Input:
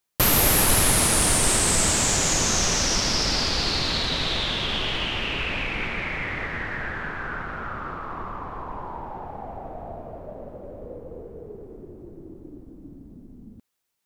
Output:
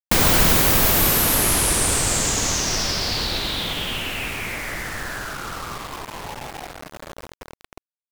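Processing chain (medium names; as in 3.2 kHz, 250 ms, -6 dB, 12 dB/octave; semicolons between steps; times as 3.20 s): word length cut 6-bit, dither none; speed mistake 45 rpm record played at 78 rpm; trim +3.5 dB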